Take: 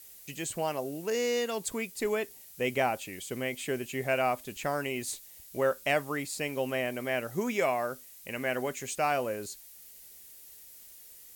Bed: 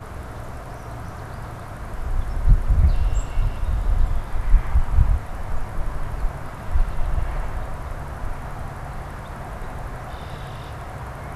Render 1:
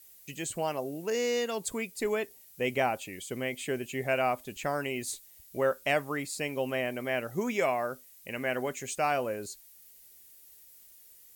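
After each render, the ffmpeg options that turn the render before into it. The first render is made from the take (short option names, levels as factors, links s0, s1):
-af "afftdn=nr=6:nf=-52"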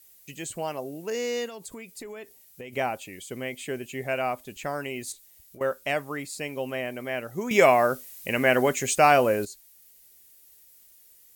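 -filter_complex "[0:a]asettb=1/sr,asplit=3[s0][s1][s2];[s0]atrim=end=1.474[s3];[s1]atrim=start=1.47:end=2.73,asetpts=PTS-STARTPTS,afade=t=in:d=0.004:c=qsin,afade=t=out:st=1.256:d=0.004:c=qsin,acompressor=threshold=0.0158:ratio=10:attack=3.2:release=140:knee=1:detection=peak[s4];[s2]atrim=start=2.726[s5];[s3][s4]acrossfade=d=0.004:c1=hsin:c2=qsin[s6];[s6][s5]acrossfade=d=0.004:c1=qsin:c2=hsin,asettb=1/sr,asplit=3[s7][s8][s9];[s7]atrim=end=5.124[s10];[s8]atrim=start=5.12:end=5.61,asetpts=PTS-STARTPTS,afade=t=in:d=0.004:c=qsin,afade=t=out:st=0.486:d=0.004:c=qsin,acompressor=threshold=0.00631:ratio=6:attack=3.2:release=140:knee=1:detection=peak[s11];[s9]atrim=start=5.606[s12];[s10][s11]acrossfade=d=0.004:c1=hsin:c2=qsin[s13];[s13][s12]acrossfade=d=0.004:c1=qsin:c2=hsin,asplit=3[s14][s15][s16];[s14]atrim=end=7.512[s17];[s15]atrim=start=7.508:end=9.452,asetpts=PTS-STARTPTS,volume=3.35[s18];[s16]atrim=start=9.448[s19];[s17][s18]acrossfade=d=0.004:c1=hsin:c2=hsin[s20];[s20][s19]acrossfade=d=0.004:c1=hsin:c2=hsin"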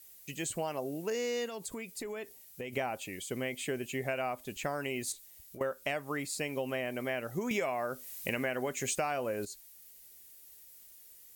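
-af "acompressor=threshold=0.0316:ratio=12"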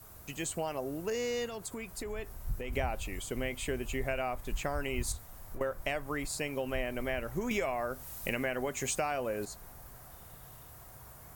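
-filter_complex "[1:a]volume=0.0891[s0];[0:a][s0]amix=inputs=2:normalize=0"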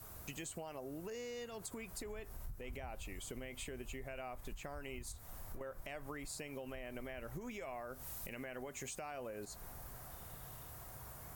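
-af "alimiter=level_in=1.5:limit=0.0631:level=0:latency=1:release=177,volume=0.668,acompressor=threshold=0.00708:ratio=6"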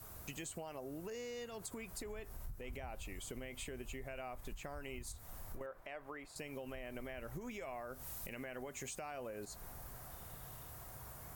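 -filter_complex "[0:a]asettb=1/sr,asplit=3[s0][s1][s2];[s0]atrim=end=5.664[s3];[s1]atrim=start=5.66:end=6.36,asetpts=PTS-STARTPTS,afade=t=in:d=0.004:c=qsin,afade=t=out:st=0.696:d=0.004:c=qsin,bass=f=250:g=-12,treble=f=4000:g=-14[s4];[s2]atrim=start=6.356[s5];[s3][s4]acrossfade=d=0.004:c1=hsin:c2=qsin[s6];[s6][s5]acrossfade=d=0.004:c1=qsin:c2=hsin"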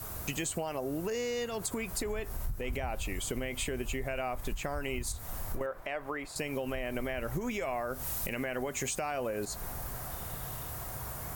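-af "volume=3.76"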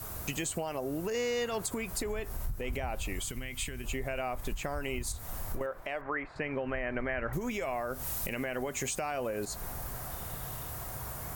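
-filter_complex "[0:a]asettb=1/sr,asplit=3[s0][s1][s2];[s0]atrim=end=1.144[s3];[s1]atrim=start=1.14:end=1.62,asetpts=PTS-STARTPTS,afade=t=in:d=0.004:c=qsin,afade=t=out:st=0.476:d=0.004:c=qsin,equalizer=f=1300:t=o:w=2.9:g=4.5[s4];[s2]atrim=start=1.616[s5];[s3][s4]acrossfade=d=0.004:c1=hsin:c2=qsin[s6];[s6][s5]acrossfade=d=0.004:c1=qsin:c2=hsin,asettb=1/sr,asplit=3[s7][s8][s9];[s7]atrim=end=3.234[s10];[s8]atrim=start=3.23:end=3.84,asetpts=PTS-STARTPTS,afade=t=in:d=0.004:c=qsin,afade=t=out:st=0.606:d=0.004:c=qsin,equalizer=f=510:w=0.71:g=-12.5[s11];[s9]atrim=start=3.836[s12];[s10][s11]acrossfade=d=0.004:c1=hsin:c2=qsin[s13];[s13][s12]acrossfade=d=0.004:c1=qsin:c2=hsin,asettb=1/sr,asplit=3[s14][s15][s16];[s14]atrim=end=6.014[s17];[s15]atrim=start=6.01:end=7.33,asetpts=PTS-STARTPTS,afade=t=in:d=0.004:c=qsin,afade=t=out:st=1.316:d=0.004:c=qsin,lowpass=f=1800:t=q:w=2[s18];[s16]atrim=start=7.326[s19];[s17][s18]acrossfade=d=0.004:c1=hsin:c2=qsin[s20];[s20][s19]acrossfade=d=0.004:c1=qsin:c2=hsin"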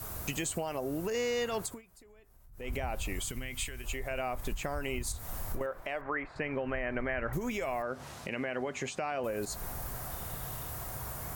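-filter_complex "[0:a]asettb=1/sr,asplit=3[s0][s1][s2];[s0]atrim=end=3.654[s3];[s1]atrim=start=3.65:end=4.11,asetpts=PTS-STARTPTS,afade=t=in:d=0.004:c=qsin,afade=t=out:st=0.456:d=0.004:c=qsin,equalizer=f=190:t=o:w=1.6:g=-10[s4];[s2]atrim=start=4.106[s5];[s3][s4]acrossfade=d=0.004:c1=hsin:c2=qsin[s6];[s6][s5]acrossfade=d=0.004:c1=qsin:c2=hsin,asettb=1/sr,asplit=3[s7][s8][s9];[s7]atrim=end=7.824[s10];[s8]atrim=start=7.82:end=9.24,asetpts=PTS-STARTPTS,afade=t=in:d=0.004:c=qsin,afade=t=out:st=1.416:d=0.004:c=qsin,highpass=120,lowpass=4400[s11];[s9]atrim=start=9.236[s12];[s10][s11]acrossfade=d=0.004:c1=hsin:c2=qsin[s13];[s13][s12]acrossfade=d=0.004:c1=qsin:c2=hsin,asplit=3[s14][s15][s16];[s14]atrim=end=1.82,asetpts=PTS-STARTPTS,afade=t=out:st=1.59:d=0.23:silence=0.0668344[s17];[s15]atrim=start=1.82:end=2.51,asetpts=PTS-STARTPTS,volume=0.0668[s18];[s16]atrim=start=2.51,asetpts=PTS-STARTPTS,afade=t=in:d=0.23:silence=0.0668344[s19];[s17][s18][s19]concat=n=3:v=0:a=1"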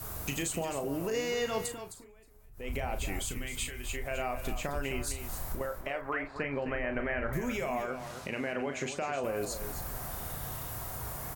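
-filter_complex "[0:a]asplit=2[s0][s1];[s1]adelay=36,volume=0.376[s2];[s0][s2]amix=inputs=2:normalize=0,aecho=1:1:261:0.316"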